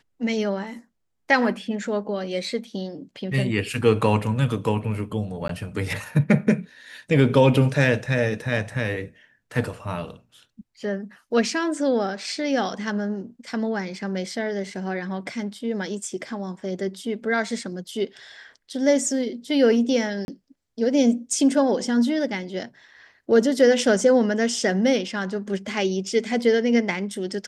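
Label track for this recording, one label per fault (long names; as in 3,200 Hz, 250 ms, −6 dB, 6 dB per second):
5.480000	5.490000	drop-out 13 ms
20.250000	20.280000	drop-out 31 ms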